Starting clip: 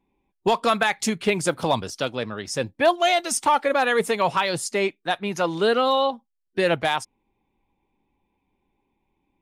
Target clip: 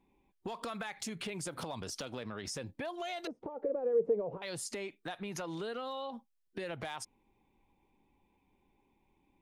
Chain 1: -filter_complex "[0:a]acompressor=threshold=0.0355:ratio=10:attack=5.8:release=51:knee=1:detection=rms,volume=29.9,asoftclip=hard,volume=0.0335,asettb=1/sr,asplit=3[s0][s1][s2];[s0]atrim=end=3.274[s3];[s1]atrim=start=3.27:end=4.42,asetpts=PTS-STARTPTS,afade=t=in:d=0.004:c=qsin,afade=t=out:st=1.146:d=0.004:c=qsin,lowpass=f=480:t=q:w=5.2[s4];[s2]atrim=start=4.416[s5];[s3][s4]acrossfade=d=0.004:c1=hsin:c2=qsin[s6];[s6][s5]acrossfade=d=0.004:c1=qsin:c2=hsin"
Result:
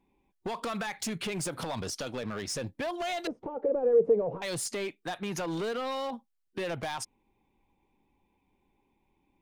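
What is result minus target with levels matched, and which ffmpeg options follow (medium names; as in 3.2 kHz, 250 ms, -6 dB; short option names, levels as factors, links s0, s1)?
compression: peak gain reduction -8 dB
-filter_complex "[0:a]acompressor=threshold=0.0126:ratio=10:attack=5.8:release=51:knee=1:detection=rms,volume=29.9,asoftclip=hard,volume=0.0335,asettb=1/sr,asplit=3[s0][s1][s2];[s0]atrim=end=3.274[s3];[s1]atrim=start=3.27:end=4.42,asetpts=PTS-STARTPTS,afade=t=in:d=0.004:c=qsin,afade=t=out:st=1.146:d=0.004:c=qsin,lowpass=f=480:t=q:w=5.2[s4];[s2]atrim=start=4.416[s5];[s3][s4]acrossfade=d=0.004:c1=hsin:c2=qsin[s6];[s6][s5]acrossfade=d=0.004:c1=qsin:c2=hsin"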